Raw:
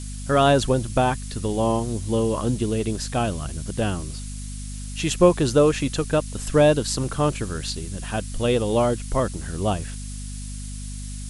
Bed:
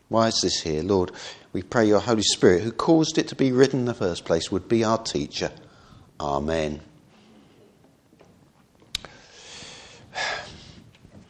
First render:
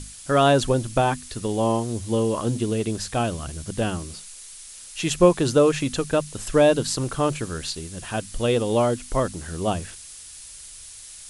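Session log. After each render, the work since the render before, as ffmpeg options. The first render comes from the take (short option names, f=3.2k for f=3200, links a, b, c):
-af "bandreject=f=50:t=h:w=6,bandreject=f=100:t=h:w=6,bandreject=f=150:t=h:w=6,bandreject=f=200:t=h:w=6,bandreject=f=250:t=h:w=6"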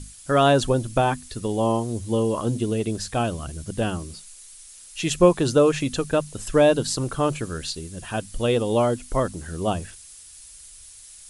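-af "afftdn=nr=6:nf=-42"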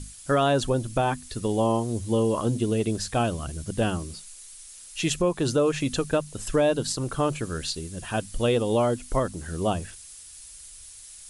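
-af "alimiter=limit=-13.5dB:level=0:latency=1:release=331"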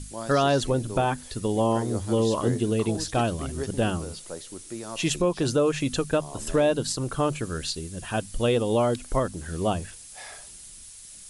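-filter_complex "[1:a]volume=-16dB[a];[0:a][a]amix=inputs=2:normalize=0"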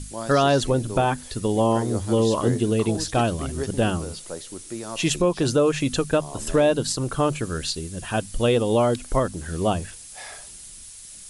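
-af "volume=3dB"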